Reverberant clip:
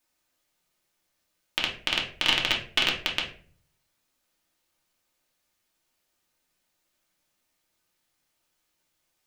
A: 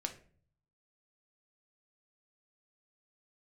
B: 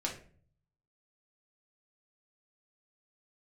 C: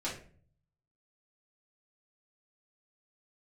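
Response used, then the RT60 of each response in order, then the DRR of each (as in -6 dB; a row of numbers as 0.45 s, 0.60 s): B; 0.45 s, 0.45 s, 0.45 s; 4.0 dB, -2.0 dB, -8.5 dB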